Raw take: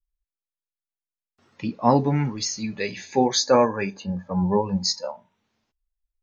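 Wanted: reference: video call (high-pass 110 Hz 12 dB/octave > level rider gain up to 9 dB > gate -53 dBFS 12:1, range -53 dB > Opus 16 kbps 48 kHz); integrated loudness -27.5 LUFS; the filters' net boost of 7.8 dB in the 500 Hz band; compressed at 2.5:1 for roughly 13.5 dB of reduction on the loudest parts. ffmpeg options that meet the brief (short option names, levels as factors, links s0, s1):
-af "equalizer=f=500:t=o:g=9,acompressor=threshold=0.0501:ratio=2.5,highpass=110,dynaudnorm=m=2.82,agate=range=0.00224:threshold=0.00224:ratio=12,volume=1.06" -ar 48000 -c:a libopus -b:a 16k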